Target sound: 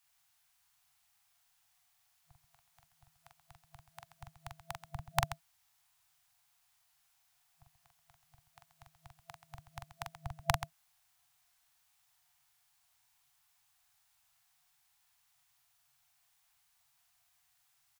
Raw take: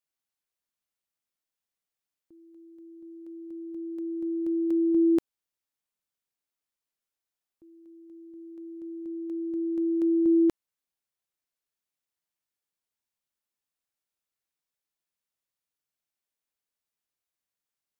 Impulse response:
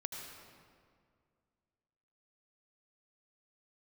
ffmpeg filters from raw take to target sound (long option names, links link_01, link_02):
-filter_complex "[0:a]afftfilt=real='re*(1-between(b*sr/4096,160,670))':imag='im*(1-between(b*sr/4096,160,670))':win_size=4096:overlap=0.75,acrossover=split=180|190|410[link_01][link_02][link_03][link_04];[link_03]dynaudnorm=framelen=100:gausssize=11:maxgain=15dB[link_05];[link_01][link_02][link_05][link_04]amix=inputs=4:normalize=0,aecho=1:1:43.73|131.2:0.631|0.251,volume=14.5dB"